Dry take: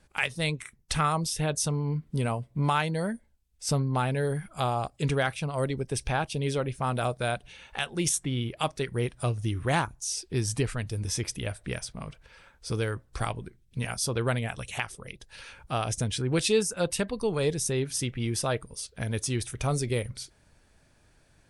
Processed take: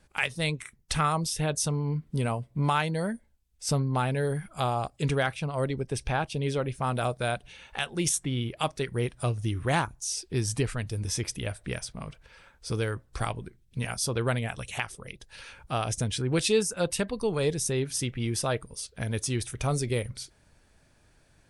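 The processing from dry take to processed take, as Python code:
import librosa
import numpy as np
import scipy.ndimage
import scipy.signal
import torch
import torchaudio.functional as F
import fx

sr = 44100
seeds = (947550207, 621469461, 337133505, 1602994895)

y = fx.high_shelf(x, sr, hz=6000.0, db=-6.0, at=(5.26, 6.64))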